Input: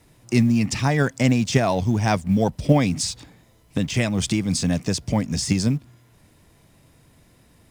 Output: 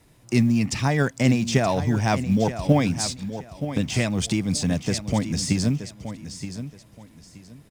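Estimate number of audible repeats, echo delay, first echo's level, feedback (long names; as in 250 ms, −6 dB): 2, 924 ms, −11.0 dB, 24%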